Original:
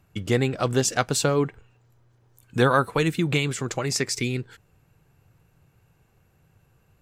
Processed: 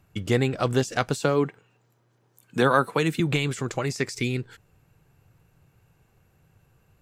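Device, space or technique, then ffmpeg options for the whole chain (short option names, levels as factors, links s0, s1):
de-esser from a sidechain: -filter_complex "[0:a]asplit=2[s0][s1];[s1]highpass=f=4200:w=0.5412,highpass=f=4200:w=1.3066,apad=whole_len=309367[s2];[s0][s2]sidechaincompress=threshold=0.0178:ratio=6:attack=4.3:release=34,asettb=1/sr,asplit=3[s3][s4][s5];[s3]atrim=end=1.204[s6];[s4]atrim=start=1.2:end=3.2,asetpts=PTS-STARTPTS,afade=t=in:d=0.004:c=qsin,afade=t=out:st=1.996:d=0.004:c=qsin,highpass=f=140:w=0.5412,highpass=f=140:w=1.3066[s7];[s5]atrim=start=3.196[s8];[s6][s7]acrossfade=d=0.004:c1=hsin:c2=qsin[s9];[s9][s8]acrossfade=d=0.004:c1=qsin:c2=hsin"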